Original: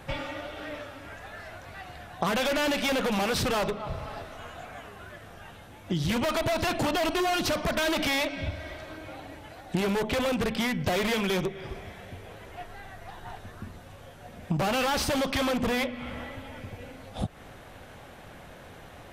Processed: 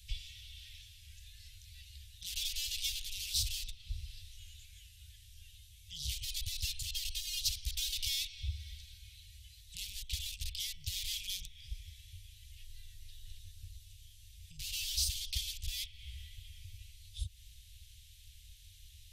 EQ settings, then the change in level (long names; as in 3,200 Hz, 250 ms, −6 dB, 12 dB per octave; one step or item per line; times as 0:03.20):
inverse Chebyshev band-stop filter 220–1,200 Hz, stop band 60 dB
dynamic equaliser 1,500 Hz, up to −5 dB, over −56 dBFS, Q 0.97
0.0 dB